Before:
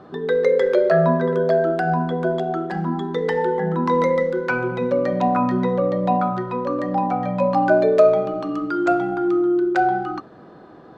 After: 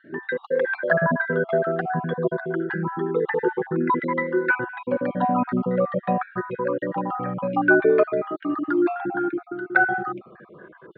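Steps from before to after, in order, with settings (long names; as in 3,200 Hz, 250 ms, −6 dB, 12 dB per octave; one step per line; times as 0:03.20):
time-frequency cells dropped at random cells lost 35%
loudspeaker in its box 120–2,900 Hz, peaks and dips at 360 Hz +6 dB, 700 Hz −7 dB, 1,600 Hz +10 dB
flanger whose copies keep moving one way falling 0.24 Hz
level +4 dB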